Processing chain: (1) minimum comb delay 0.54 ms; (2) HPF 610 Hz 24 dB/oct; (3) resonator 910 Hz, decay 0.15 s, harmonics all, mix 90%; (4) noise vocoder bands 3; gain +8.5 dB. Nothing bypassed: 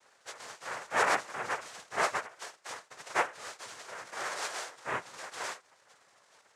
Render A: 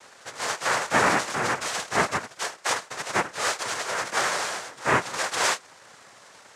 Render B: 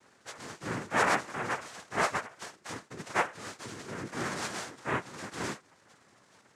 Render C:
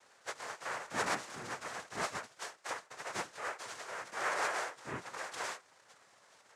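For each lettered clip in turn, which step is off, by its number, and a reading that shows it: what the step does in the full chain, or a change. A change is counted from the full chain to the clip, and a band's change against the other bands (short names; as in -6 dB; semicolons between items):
3, 125 Hz band +7.0 dB; 2, 125 Hz band +13.0 dB; 1, 125 Hz band +5.5 dB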